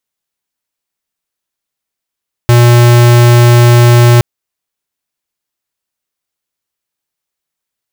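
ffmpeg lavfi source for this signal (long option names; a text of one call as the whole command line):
ffmpeg -f lavfi -i "aevalsrc='0.596*(2*lt(mod(120*t,1),0.5)-1)':duration=1.72:sample_rate=44100" out.wav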